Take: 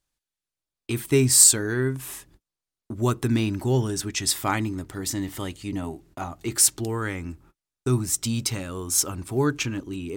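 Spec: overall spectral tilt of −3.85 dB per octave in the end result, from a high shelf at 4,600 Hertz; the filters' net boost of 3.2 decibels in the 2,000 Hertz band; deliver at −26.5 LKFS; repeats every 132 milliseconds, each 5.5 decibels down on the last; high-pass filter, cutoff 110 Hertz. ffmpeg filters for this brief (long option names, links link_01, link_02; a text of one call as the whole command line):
ffmpeg -i in.wav -af "highpass=110,equalizer=frequency=2000:width_type=o:gain=5.5,highshelf=frequency=4600:gain=-7,aecho=1:1:132|264|396|528|660|792|924:0.531|0.281|0.149|0.079|0.0419|0.0222|0.0118,volume=-2dB" out.wav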